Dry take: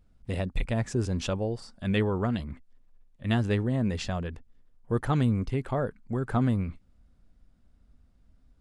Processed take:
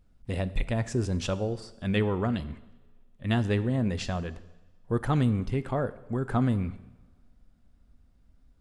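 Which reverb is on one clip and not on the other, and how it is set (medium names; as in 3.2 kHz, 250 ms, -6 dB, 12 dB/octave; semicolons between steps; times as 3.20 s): two-slope reverb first 0.99 s, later 2.6 s, from -22 dB, DRR 13.5 dB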